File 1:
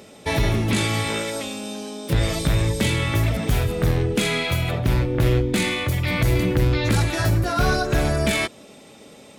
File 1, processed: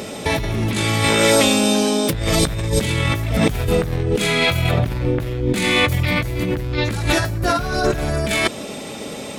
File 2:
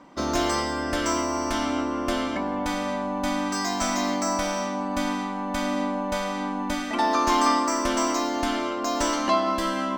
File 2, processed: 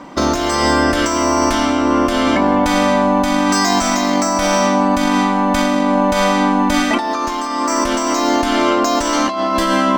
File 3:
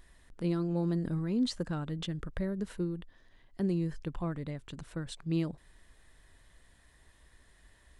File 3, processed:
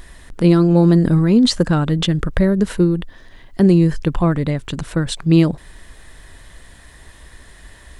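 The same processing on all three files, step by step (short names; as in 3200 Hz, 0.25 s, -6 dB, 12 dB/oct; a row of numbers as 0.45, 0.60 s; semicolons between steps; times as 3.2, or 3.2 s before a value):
negative-ratio compressor -28 dBFS, ratio -1; normalise peaks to -2 dBFS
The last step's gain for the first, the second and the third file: +8.5, +12.5, +19.0 dB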